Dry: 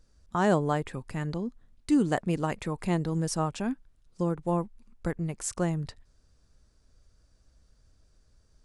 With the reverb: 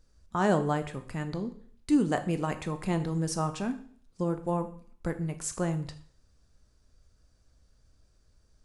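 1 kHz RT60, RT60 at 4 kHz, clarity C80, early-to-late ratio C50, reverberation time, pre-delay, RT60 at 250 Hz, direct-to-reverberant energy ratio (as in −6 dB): 0.50 s, 0.55 s, 16.5 dB, 13.5 dB, 0.55 s, 7 ms, 0.50 s, 8.0 dB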